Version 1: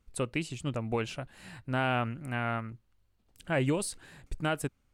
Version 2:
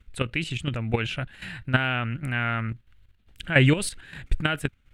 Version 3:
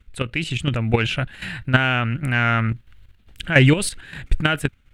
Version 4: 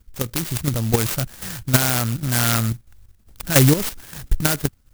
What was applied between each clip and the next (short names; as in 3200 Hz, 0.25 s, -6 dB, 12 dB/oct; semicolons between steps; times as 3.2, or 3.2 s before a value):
low shelf 190 Hz +11 dB; level quantiser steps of 12 dB; band shelf 2300 Hz +11 dB; gain +7 dB
AGC gain up to 7 dB; in parallel at -8 dB: soft clip -12 dBFS, distortion -13 dB; on the sum: gain -1 dB
clock jitter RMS 0.14 ms